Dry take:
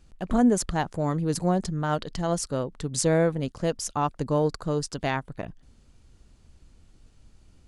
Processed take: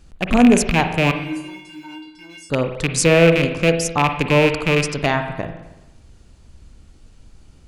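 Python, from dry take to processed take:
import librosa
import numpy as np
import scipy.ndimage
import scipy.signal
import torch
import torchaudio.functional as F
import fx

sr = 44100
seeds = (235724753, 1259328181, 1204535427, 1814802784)

y = fx.rattle_buzz(x, sr, strikes_db=-30.0, level_db=-16.0)
y = fx.comb_fb(y, sr, f0_hz=310.0, decay_s=0.39, harmonics='odd', damping=0.0, mix_pct=100, at=(1.11, 2.5))
y = fx.rev_spring(y, sr, rt60_s=1.0, pass_ms=(42, 54), chirp_ms=20, drr_db=7.0)
y = y * librosa.db_to_amplitude(7.5)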